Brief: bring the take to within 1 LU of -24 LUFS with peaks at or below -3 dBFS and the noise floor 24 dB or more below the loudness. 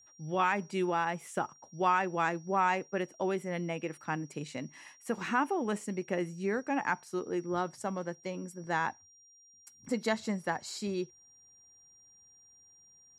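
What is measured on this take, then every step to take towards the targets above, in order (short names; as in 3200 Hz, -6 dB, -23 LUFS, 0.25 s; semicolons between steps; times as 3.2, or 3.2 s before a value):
steady tone 5700 Hz; tone level -58 dBFS; loudness -33.5 LUFS; peak -16.0 dBFS; loudness target -24.0 LUFS
-> notch 5700 Hz, Q 30; gain +9.5 dB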